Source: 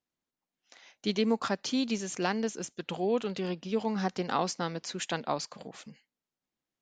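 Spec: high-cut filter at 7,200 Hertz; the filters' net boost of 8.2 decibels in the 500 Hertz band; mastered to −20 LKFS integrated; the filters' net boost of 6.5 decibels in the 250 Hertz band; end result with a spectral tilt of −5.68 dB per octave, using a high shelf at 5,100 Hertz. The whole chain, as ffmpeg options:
ffmpeg -i in.wav -af "lowpass=7200,equalizer=frequency=250:width_type=o:gain=6,equalizer=frequency=500:width_type=o:gain=8,highshelf=frequency=5100:gain=-7.5,volume=6dB" out.wav

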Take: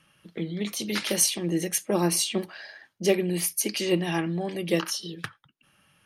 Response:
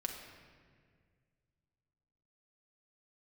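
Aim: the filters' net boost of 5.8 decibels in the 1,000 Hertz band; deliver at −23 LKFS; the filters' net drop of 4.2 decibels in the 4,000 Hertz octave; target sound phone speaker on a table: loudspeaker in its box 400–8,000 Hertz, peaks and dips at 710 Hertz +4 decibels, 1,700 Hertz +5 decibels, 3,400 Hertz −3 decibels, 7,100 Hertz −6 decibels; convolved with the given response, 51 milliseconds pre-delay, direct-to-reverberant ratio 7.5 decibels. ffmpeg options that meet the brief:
-filter_complex "[0:a]equalizer=frequency=1000:width_type=o:gain=5.5,equalizer=frequency=4000:width_type=o:gain=-4.5,asplit=2[link_01][link_02];[1:a]atrim=start_sample=2205,adelay=51[link_03];[link_02][link_03]afir=irnorm=-1:irlink=0,volume=-8dB[link_04];[link_01][link_04]amix=inputs=2:normalize=0,highpass=frequency=400:width=0.5412,highpass=frequency=400:width=1.3066,equalizer=frequency=710:width_type=q:width=4:gain=4,equalizer=frequency=1700:width_type=q:width=4:gain=5,equalizer=frequency=3400:width_type=q:width=4:gain=-3,equalizer=frequency=7100:width_type=q:width=4:gain=-6,lowpass=frequency=8000:width=0.5412,lowpass=frequency=8000:width=1.3066,volume=6.5dB"

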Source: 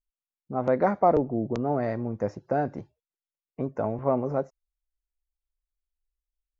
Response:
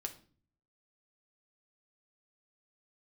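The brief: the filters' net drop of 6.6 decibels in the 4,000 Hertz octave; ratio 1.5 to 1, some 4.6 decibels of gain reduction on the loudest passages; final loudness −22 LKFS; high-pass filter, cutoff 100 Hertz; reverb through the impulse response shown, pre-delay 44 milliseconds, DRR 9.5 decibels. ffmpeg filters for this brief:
-filter_complex "[0:a]highpass=100,equalizer=frequency=4000:width_type=o:gain=-9,acompressor=threshold=-29dB:ratio=1.5,asplit=2[link_01][link_02];[1:a]atrim=start_sample=2205,adelay=44[link_03];[link_02][link_03]afir=irnorm=-1:irlink=0,volume=-8dB[link_04];[link_01][link_04]amix=inputs=2:normalize=0,volume=8.5dB"

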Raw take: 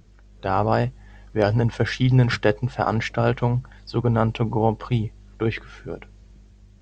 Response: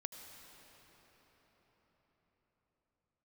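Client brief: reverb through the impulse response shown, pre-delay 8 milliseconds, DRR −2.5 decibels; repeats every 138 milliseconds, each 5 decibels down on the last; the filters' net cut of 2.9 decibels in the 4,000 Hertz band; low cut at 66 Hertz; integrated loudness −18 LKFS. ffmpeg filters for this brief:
-filter_complex "[0:a]highpass=66,equalizer=frequency=4000:width_type=o:gain=-4,aecho=1:1:138|276|414|552|690|828|966:0.562|0.315|0.176|0.0988|0.0553|0.031|0.0173,asplit=2[link_01][link_02];[1:a]atrim=start_sample=2205,adelay=8[link_03];[link_02][link_03]afir=irnorm=-1:irlink=0,volume=5dB[link_04];[link_01][link_04]amix=inputs=2:normalize=0,volume=-1.5dB"

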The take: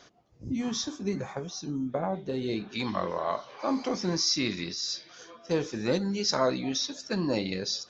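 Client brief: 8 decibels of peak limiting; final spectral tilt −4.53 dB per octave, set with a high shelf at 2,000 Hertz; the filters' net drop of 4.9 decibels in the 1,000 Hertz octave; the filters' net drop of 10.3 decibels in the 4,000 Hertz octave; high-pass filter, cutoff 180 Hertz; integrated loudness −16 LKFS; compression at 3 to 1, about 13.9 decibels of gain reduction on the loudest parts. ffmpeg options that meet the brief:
ffmpeg -i in.wav -af "highpass=180,equalizer=frequency=1000:width_type=o:gain=-4,highshelf=frequency=2000:gain=-8.5,equalizer=frequency=4000:width_type=o:gain=-4,acompressor=threshold=-43dB:ratio=3,volume=29.5dB,alimiter=limit=-6dB:level=0:latency=1" out.wav

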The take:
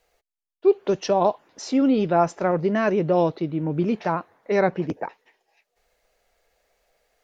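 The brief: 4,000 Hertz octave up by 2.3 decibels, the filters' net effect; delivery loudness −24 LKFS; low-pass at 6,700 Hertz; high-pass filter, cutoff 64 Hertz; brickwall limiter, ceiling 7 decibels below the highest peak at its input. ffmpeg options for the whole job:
ffmpeg -i in.wav -af "highpass=64,lowpass=6700,equalizer=frequency=4000:width_type=o:gain=4,volume=1dB,alimiter=limit=-13dB:level=0:latency=1" out.wav

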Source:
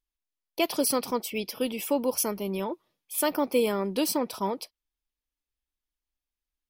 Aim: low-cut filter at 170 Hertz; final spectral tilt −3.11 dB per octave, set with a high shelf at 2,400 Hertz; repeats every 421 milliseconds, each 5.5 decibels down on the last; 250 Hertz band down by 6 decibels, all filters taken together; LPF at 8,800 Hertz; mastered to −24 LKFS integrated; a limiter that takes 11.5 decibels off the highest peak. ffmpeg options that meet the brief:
ffmpeg -i in.wav -af "highpass=170,lowpass=8800,equalizer=frequency=250:width_type=o:gain=-6.5,highshelf=frequency=2400:gain=4,alimiter=limit=-23.5dB:level=0:latency=1,aecho=1:1:421|842|1263|1684|2105|2526|2947:0.531|0.281|0.149|0.079|0.0419|0.0222|0.0118,volume=9.5dB" out.wav

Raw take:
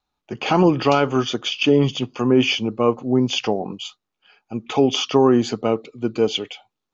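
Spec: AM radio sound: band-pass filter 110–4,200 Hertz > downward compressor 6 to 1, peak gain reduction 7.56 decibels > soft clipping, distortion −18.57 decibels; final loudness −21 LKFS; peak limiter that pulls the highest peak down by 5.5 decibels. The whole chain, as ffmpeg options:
ffmpeg -i in.wav -af "alimiter=limit=-10dB:level=0:latency=1,highpass=110,lowpass=4200,acompressor=threshold=-21dB:ratio=6,asoftclip=threshold=-17dB,volume=7.5dB" out.wav

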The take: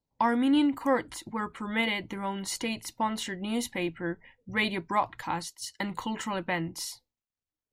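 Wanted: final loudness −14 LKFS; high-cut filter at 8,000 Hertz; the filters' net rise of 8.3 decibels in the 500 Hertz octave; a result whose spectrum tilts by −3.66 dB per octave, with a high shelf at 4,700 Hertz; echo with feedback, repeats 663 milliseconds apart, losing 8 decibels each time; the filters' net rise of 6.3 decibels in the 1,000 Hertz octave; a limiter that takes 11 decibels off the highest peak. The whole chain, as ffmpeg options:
ffmpeg -i in.wav -af "lowpass=8000,equalizer=frequency=500:width_type=o:gain=8.5,equalizer=frequency=1000:width_type=o:gain=5,highshelf=frequency=4700:gain=-5.5,alimiter=limit=-17.5dB:level=0:latency=1,aecho=1:1:663|1326|1989|2652|3315:0.398|0.159|0.0637|0.0255|0.0102,volume=15dB" out.wav

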